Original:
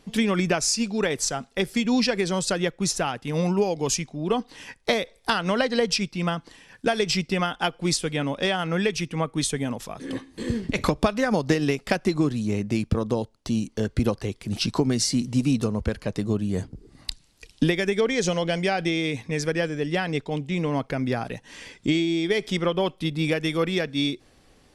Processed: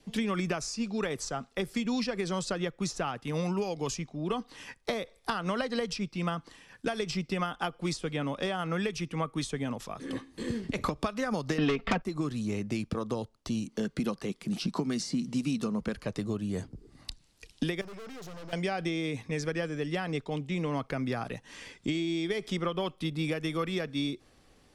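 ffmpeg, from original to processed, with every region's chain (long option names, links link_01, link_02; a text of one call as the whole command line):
ffmpeg -i in.wav -filter_complex "[0:a]asettb=1/sr,asplit=3[link_01][link_02][link_03];[link_01]atrim=end=11.584[link_04];[link_02]atrim=start=11.58:end=12.02,asetpts=PTS-STARTPTS,afade=type=in:duration=0.004:curve=qsin,afade=type=out:start_time=0.436:duration=0.004:curve=qsin,lowpass=frequency=3300:width=0.5412,lowpass=frequency=3300:width=1.3066,aecho=1:1:4.4:0.84,atrim=end_sample=19404,aeval=exprs='0.631*sin(PI/2*3.55*val(0)/0.631)':channel_layout=same[link_05];[link_03]atrim=start=12.016[link_06];[link_04][link_05]acrossfade=duration=0.004:curve1=hsin:curve2=qsin[link_07];[link_07][link_06]acrossfade=duration=0.004:curve1=qsin:curve2=hsin,asettb=1/sr,asplit=3[link_08][link_09][link_10];[link_08]atrim=end=13.664[link_11];[link_09]atrim=start=13.66:end=15.94,asetpts=PTS-STARTPTS,afade=type=in:duration=0.004:curve=qsin,afade=type=out:start_time=2.276:duration=0.004:curve=qsin,lowshelf=frequency=130:width_type=q:width=3:gain=-9,acompressor=mode=upward:threshold=-40dB:ratio=2.5:attack=3.2:release=140:knee=2.83:detection=peak[link_12];[link_10]atrim=start=15.936[link_13];[link_11][link_12]acrossfade=duration=0.004:curve1=hsin:curve2=qsin[link_14];[link_14][link_13]acrossfade=duration=0.004:curve1=qsin:curve2=hsin,asettb=1/sr,asplit=3[link_15][link_16][link_17];[link_15]atrim=end=17.814[link_18];[link_16]atrim=start=17.81:end=18.53,asetpts=PTS-STARTPTS,afade=type=in:duration=0.004:curve=qsin,afade=type=out:start_time=0.716:duration=0.004:curve=qsin,highshelf=frequency=2000:gain=-8.5,aeval=exprs='val(0)+0.00224*sin(2*PI*5200*n/s)':channel_layout=same,aeval=exprs='(tanh(89.1*val(0)+0.5)-tanh(0.5))/89.1':channel_layout=same[link_19];[link_17]atrim=start=18.526[link_20];[link_18][link_19]acrossfade=duration=0.004:curve1=hsin:curve2=qsin[link_21];[link_21][link_20]acrossfade=duration=0.004:curve1=qsin:curve2=hsin,adynamicequalizer=threshold=0.00398:dfrequency=1200:dqfactor=5.6:tfrequency=1200:tqfactor=5.6:attack=5:release=100:ratio=0.375:range=3.5:mode=boostabove:tftype=bell,acrossover=split=150|1300|7500[link_22][link_23][link_24][link_25];[link_22]acompressor=threshold=-35dB:ratio=4[link_26];[link_23]acompressor=threshold=-25dB:ratio=4[link_27];[link_24]acompressor=threshold=-33dB:ratio=4[link_28];[link_25]acompressor=threshold=-50dB:ratio=4[link_29];[link_26][link_27][link_28][link_29]amix=inputs=4:normalize=0,volume=-4.5dB" out.wav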